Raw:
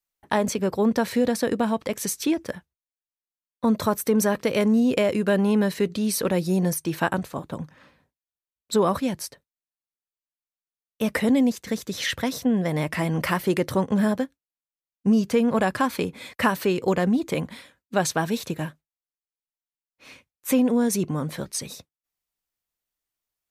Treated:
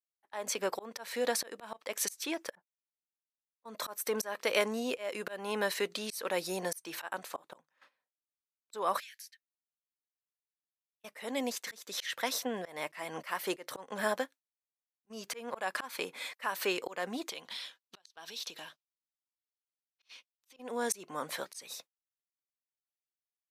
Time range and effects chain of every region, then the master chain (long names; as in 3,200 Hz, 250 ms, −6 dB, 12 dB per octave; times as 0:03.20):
0:02.55–0:03.75: low-pass that shuts in the quiet parts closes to 490 Hz, open at −21 dBFS + downward compressor 5 to 1, threshold −22 dBFS + multiband upward and downward expander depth 70%
0:09.00–0:11.04: Butterworth high-pass 1,600 Hz 72 dB per octave + parametric band 8,800 Hz −6.5 dB 0.38 octaves + downward compressor 8 to 1, threshold −46 dBFS
0:17.29–0:20.57: flat-topped bell 4,100 Hz +10 dB 1.3 octaves + notch filter 570 Hz, Q 11 + downward compressor, threshold −36 dBFS
whole clip: high-pass filter 680 Hz 12 dB per octave; volume swells 298 ms; noise gate −53 dBFS, range −18 dB